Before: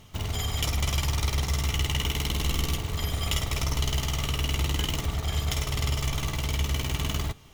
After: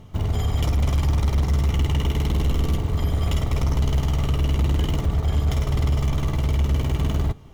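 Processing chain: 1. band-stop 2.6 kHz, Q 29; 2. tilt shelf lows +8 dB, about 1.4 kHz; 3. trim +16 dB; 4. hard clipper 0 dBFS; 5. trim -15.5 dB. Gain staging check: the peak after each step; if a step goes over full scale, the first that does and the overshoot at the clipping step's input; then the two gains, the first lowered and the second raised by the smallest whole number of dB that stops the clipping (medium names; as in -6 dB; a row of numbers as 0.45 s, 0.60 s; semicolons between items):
-11.0 dBFS, -8.0 dBFS, +8.0 dBFS, 0.0 dBFS, -15.5 dBFS; step 3, 8.0 dB; step 3 +8 dB, step 5 -7.5 dB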